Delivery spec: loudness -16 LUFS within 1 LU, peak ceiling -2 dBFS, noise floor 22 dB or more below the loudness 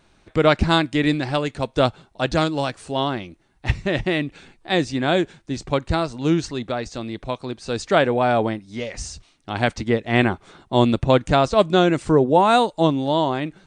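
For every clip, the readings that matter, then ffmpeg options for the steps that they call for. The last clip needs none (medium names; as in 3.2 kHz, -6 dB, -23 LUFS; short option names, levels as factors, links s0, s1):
loudness -21.0 LUFS; peak level -3.0 dBFS; loudness target -16.0 LUFS
-> -af "volume=1.78,alimiter=limit=0.794:level=0:latency=1"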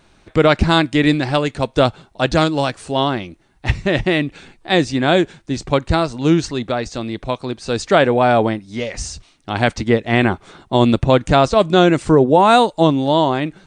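loudness -16.5 LUFS; peak level -2.0 dBFS; noise floor -54 dBFS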